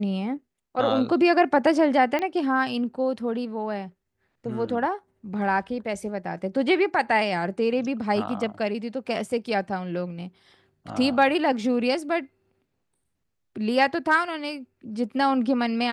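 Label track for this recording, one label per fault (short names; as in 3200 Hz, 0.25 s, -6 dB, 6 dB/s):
2.190000	2.190000	pop -15 dBFS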